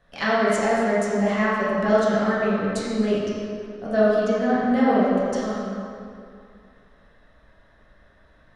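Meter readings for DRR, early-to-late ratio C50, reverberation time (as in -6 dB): -9.5 dB, -3.0 dB, 2.4 s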